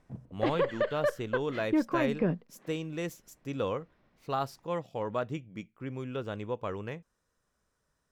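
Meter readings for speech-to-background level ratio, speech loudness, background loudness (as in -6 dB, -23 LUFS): -4.0 dB, -36.0 LUFS, -32.0 LUFS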